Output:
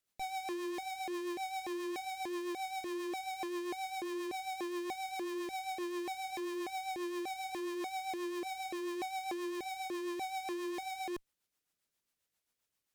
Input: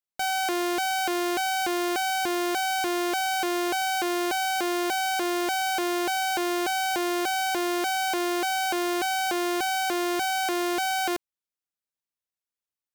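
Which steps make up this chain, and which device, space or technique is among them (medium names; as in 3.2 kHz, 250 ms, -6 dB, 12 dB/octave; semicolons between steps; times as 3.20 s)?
overdriven rotary cabinet (valve stage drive 49 dB, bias 0.45; rotary cabinet horn 7.5 Hz); trim +12.5 dB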